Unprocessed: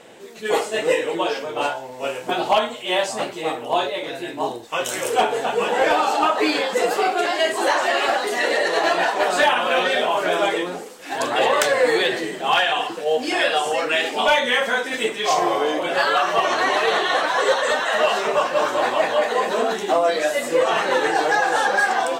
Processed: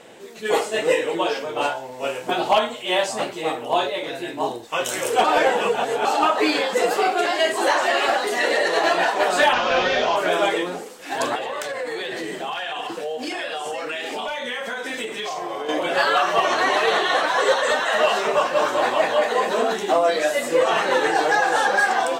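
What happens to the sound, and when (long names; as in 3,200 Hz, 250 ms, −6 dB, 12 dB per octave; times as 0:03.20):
0:05.24–0:06.05: reverse
0:09.53–0:10.16: linear delta modulator 32 kbit/s, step −27 dBFS
0:11.35–0:15.69: downward compressor 16 to 1, threshold −24 dBFS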